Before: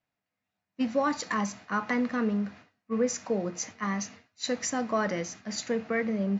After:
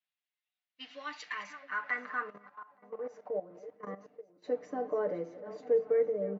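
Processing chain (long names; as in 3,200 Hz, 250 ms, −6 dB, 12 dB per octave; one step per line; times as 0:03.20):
feedback delay that plays each chunk backwards 437 ms, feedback 42%, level −13.5 dB
high-shelf EQ 6,300 Hz −11.5 dB
comb filter 6.7 ms, depth 90%
0:02.22–0:04.44: output level in coarse steps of 14 dB
band-pass filter sweep 3,400 Hz → 470 Hz, 0:00.91–0:03.72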